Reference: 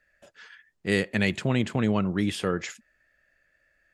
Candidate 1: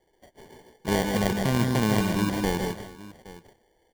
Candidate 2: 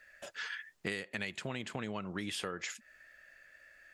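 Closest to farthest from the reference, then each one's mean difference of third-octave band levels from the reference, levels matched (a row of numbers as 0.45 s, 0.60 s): 2, 1; 6.5 dB, 11.5 dB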